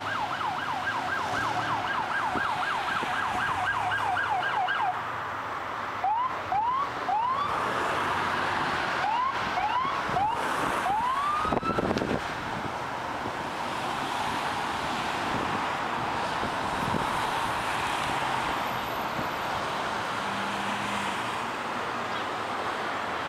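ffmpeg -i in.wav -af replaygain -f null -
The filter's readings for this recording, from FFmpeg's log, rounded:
track_gain = +11.8 dB
track_peak = 0.158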